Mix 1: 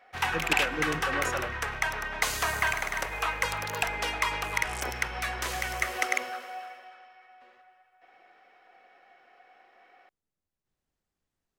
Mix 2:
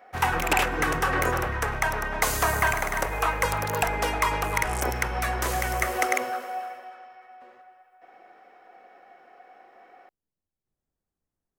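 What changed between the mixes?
background +9.5 dB
master: add parametric band 3,300 Hz −11 dB 2.4 octaves

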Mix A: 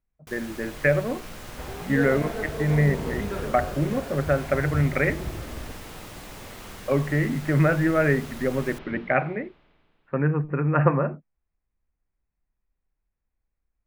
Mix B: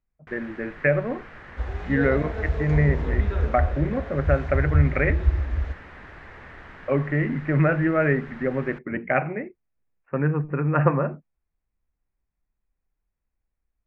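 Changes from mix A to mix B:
first sound: add low-pass with resonance 1,800 Hz, resonance Q 3.3
second sound: add low shelf with overshoot 100 Hz +10 dB, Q 3
reverb: off

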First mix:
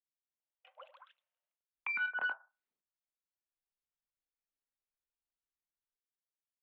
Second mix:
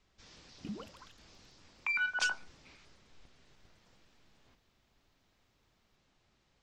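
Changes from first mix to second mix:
speech: unmuted
first sound: remove linear-phase brick-wall high-pass 500 Hz
master: remove high-frequency loss of the air 290 metres

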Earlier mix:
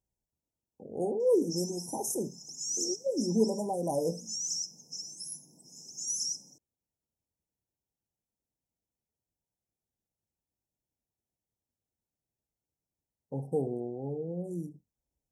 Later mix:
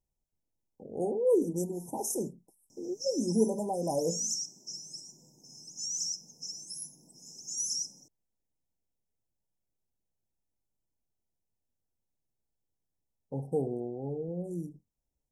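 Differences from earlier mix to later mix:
speech: remove high-pass filter 42 Hz
background: entry +1.50 s

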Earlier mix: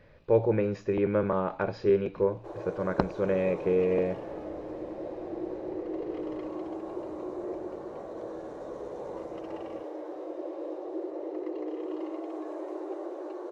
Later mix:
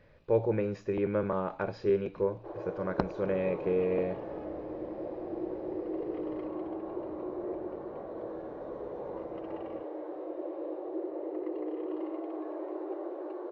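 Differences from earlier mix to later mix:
speech −3.5 dB
first sound: add high-frequency loss of the air 310 metres

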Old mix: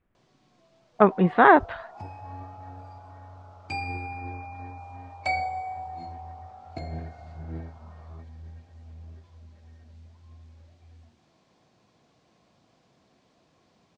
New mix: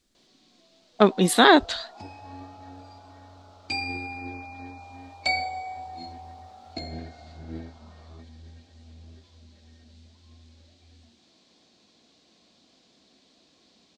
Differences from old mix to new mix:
speech: remove low-pass filter 2,700 Hz 24 dB per octave
master: add octave-band graphic EQ 125/250/1,000/4,000/8,000 Hz −11/+7/−4/+12/+6 dB

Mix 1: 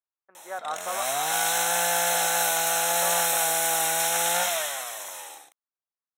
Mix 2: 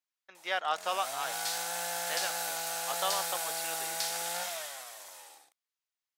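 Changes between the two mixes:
speech: remove low-pass filter 1,400 Hz 24 dB per octave
first sound −11.5 dB
master: remove Butterworth band-reject 4,700 Hz, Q 3.9

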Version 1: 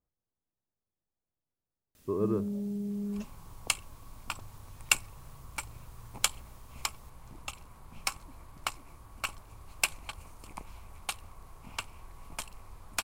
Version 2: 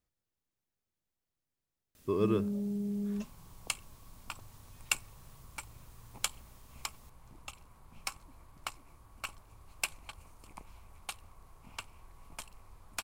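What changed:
speech: remove Chebyshev low-pass filter 1,000 Hz, order 2
second sound −6.0 dB

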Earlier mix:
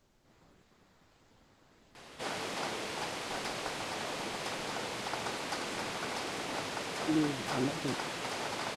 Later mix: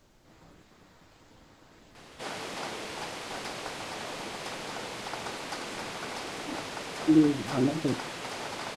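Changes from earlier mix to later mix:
speech +6.0 dB
reverb: on, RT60 0.40 s

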